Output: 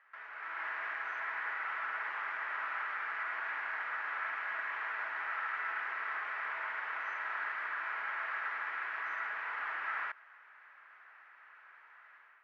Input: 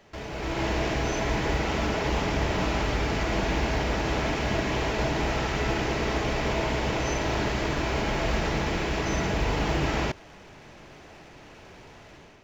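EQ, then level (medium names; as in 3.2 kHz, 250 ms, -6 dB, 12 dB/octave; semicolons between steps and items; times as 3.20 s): Butterworth band-pass 1.5 kHz, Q 2; 0.0 dB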